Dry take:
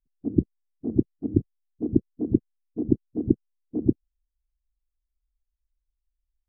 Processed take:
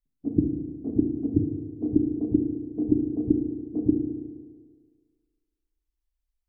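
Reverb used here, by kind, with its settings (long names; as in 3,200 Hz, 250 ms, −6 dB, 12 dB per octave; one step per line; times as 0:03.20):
feedback delay network reverb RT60 1.8 s, low-frequency decay 0.8×, high-frequency decay 0.9×, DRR 1.5 dB
level −3 dB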